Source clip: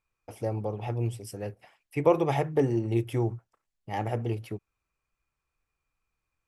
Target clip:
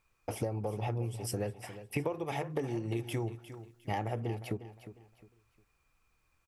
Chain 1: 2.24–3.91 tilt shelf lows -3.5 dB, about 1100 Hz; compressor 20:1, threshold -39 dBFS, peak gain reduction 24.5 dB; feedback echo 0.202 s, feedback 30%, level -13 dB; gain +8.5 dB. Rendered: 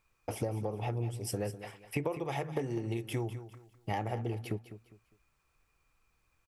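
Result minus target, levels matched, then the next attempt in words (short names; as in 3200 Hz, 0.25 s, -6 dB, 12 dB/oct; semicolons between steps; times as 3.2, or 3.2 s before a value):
echo 0.154 s early
2.24–3.91 tilt shelf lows -3.5 dB, about 1100 Hz; compressor 20:1, threshold -39 dBFS, peak gain reduction 24.5 dB; feedback echo 0.356 s, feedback 30%, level -13 dB; gain +8.5 dB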